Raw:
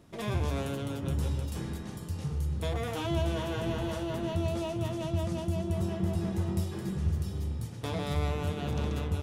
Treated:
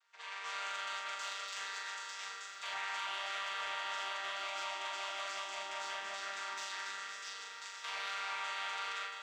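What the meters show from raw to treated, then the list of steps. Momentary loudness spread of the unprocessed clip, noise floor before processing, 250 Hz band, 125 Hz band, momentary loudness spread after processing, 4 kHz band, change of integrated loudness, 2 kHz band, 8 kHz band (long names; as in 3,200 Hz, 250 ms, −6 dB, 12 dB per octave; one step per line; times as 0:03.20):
4 LU, −40 dBFS, −35.5 dB, below −40 dB, 5 LU, +3.0 dB, −7.0 dB, +6.0 dB, +1.0 dB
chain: channel vocoder with a chord as carrier major triad, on D#3
high-pass filter 1,300 Hz 24 dB per octave
automatic gain control gain up to 15.5 dB
brickwall limiter −36.5 dBFS, peak gain reduction 10.5 dB
soft clipping −37.5 dBFS, distortion −22 dB
flutter between parallel walls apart 7 metres, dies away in 0.36 s
feedback echo at a low word length 524 ms, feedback 35%, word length 12 bits, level −10.5 dB
level +3.5 dB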